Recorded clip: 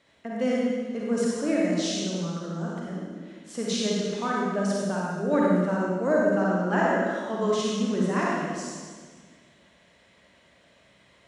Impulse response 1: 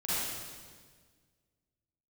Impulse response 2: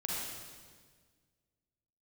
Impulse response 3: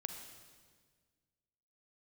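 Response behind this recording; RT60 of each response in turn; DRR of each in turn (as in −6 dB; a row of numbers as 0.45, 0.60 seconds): 2; 1.6, 1.6, 1.6 seconds; −12.0, −5.0, 5.0 decibels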